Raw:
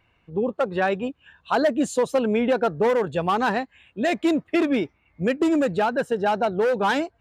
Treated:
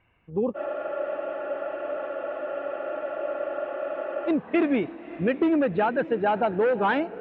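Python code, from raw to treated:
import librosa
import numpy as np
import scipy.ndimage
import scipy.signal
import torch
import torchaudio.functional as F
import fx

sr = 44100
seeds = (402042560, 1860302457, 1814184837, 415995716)

p1 = scipy.signal.sosfilt(scipy.signal.butter(4, 2800.0, 'lowpass', fs=sr, output='sos'), x)
p2 = p1 + fx.echo_diffused(p1, sr, ms=577, feedback_pct=49, wet_db=-16.0, dry=0)
p3 = fx.spec_freeze(p2, sr, seeds[0], at_s=0.57, hold_s=3.72)
y = F.gain(torch.from_numpy(p3), -1.5).numpy()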